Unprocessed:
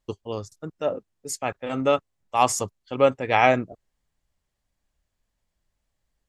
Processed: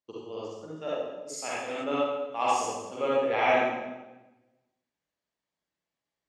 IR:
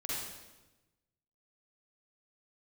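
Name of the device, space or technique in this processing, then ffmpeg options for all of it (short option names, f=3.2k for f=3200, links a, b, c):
supermarket ceiling speaker: -filter_complex "[0:a]highpass=230,lowpass=6.2k[a];[1:a]atrim=start_sample=2205[b];[a][b]afir=irnorm=-1:irlink=0,asplit=3[c][d][e];[c]afade=t=out:st=0.76:d=0.02[f];[d]adynamicequalizer=threshold=0.01:dfrequency=1700:dqfactor=0.7:tfrequency=1700:tqfactor=0.7:attack=5:release=100:ratio=0.375:range=3:mode=boostabove:tftype=highshelf,afade=t=in:st=0.76:d=0.02,afade=t=out:st=1.83:d=0.02[g];[e]afade=t=in:st=1.83:d=0.02[h];[f][g][h]amix=inputs=3:normalize=0,volume=-7.5dB"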